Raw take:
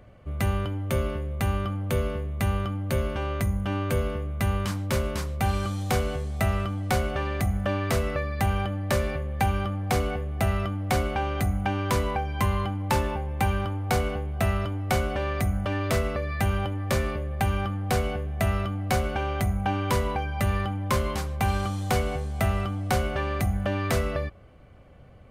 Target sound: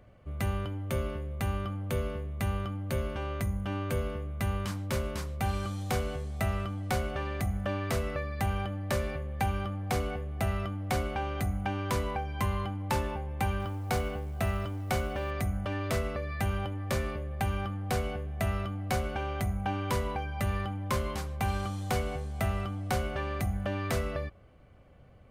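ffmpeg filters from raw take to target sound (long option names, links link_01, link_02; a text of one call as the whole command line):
ffmpeg -i in.wav -filter_complex "[0:a]asettb=1/sr,asplit=3[link_01][link_02][link_03];[link_01]atrim=end=13.604[link_04];[link_02]atrim=start=13.6:end=15.31,asetpts=PTS-STARTPTS,afade=type=in:duration=0.004:curve=qsin,afade=type=out:start_time=1.706:duration=0.004:curve=qsin,acrusher=bits=8:mode=log:mix=0:aa=0.000001[link_05];[link_03]atrim=start=15.306[link_06];[link_04][link_05]acrossfade=duration=0.004:curve1=hsin:curve2=qsin[link_07];[link_07][link_06]acrossfade=duration=0.004:curve1=qsin:curve2=hsin,volume=-5.5dB" out.wav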